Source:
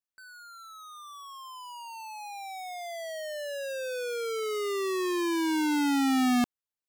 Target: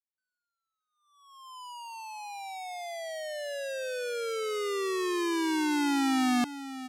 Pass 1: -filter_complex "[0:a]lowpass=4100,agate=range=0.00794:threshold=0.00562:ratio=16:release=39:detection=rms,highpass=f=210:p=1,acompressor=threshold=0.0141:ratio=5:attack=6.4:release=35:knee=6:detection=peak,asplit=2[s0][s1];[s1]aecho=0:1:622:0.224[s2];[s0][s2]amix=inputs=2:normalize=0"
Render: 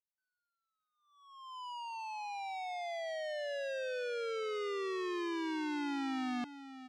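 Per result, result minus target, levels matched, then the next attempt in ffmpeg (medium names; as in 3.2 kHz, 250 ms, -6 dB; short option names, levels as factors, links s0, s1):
compression: peak gain reduction +11.5 dB; 8 kHz band -8.5 dB
-filter_complex "[0:a]lowpass=4100,agate=range=0.00794:threshold=0.00562:ratio=16:release=39:detection=rms,highpass=f=210:p=1,asplit=2[s0][s1];[s1]aecho=0:1:622:0.224[s2];[s0][s2]amix=inputs=2:normalize=0"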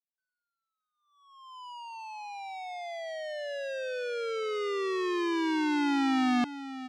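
8 kHz band -10.0 dB
-filter_complex "[0:a]lowpass=12000,agate=range=0.00794:threshold=0.00562:ratio=16:release=39:detection=rms,highpass=f=210:p=1,asplit=2[s0][s1];[s1]aecho=0:1:622:0.224[s2];[s0][s2]amix=inputs=2:normalize=0"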